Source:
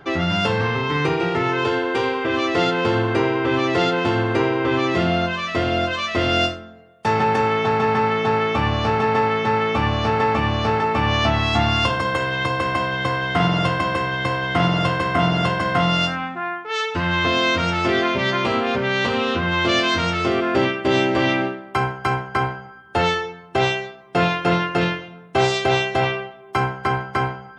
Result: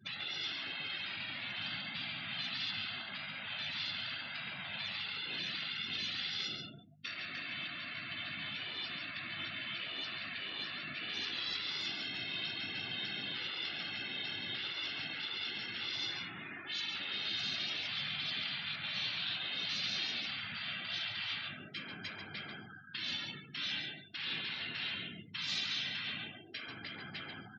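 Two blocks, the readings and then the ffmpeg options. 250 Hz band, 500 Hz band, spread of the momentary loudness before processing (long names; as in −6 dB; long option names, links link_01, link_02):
−28.5 dB, −35.5 dB, 5 LU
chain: -filter_complex "[0:a]afftfilt=real='hypot(re,im)*cos(2*PI*random(0))':imag='hypot(re,im)*sin(2*PI*random(1))':win_size=512:overlap=0.75,asoftclip=type=tanh:threshold=-21dB,acompressor=threshold=-36dB:ratio=2,afftfilt=real='re*lt(hypot(re,im),0.0447)':imag='im*lt(hypot(re,im),0.0447)':win_size=1024:overlap=0.75,equalizer=frequency=500:width_type=o:width=1:gain=-9,equalizer=frequency=1000:width_type=o:width=1:gain=-9,equalizer=frequency=4000:width_type=o:width=1:gain=9,equalizer=frequency=8000:width_type=o:width=1:gain=-4,aeval=exprs='val(0)+0.00141*(sin(2*PI*50*n/s)+sin(2*PI*2*50*n/s)/2+sin(2*PI*3*50*n/s)/3+sin(2*PI*4*50*n/s)/4+sin(2*PI*5*50*n/s)/5)':channel_layout=same,highpass=frequency=110:width=0.5412,highpass=frequency=110:width=1.3066,asplit=2[link_01][link_02];[link_02]aecho=0:1:139:0.531[link_03];[link_01][link_03]amix=inputs=2:normalize=0,afftdn=noise_reduction=34:noise_floor=-48"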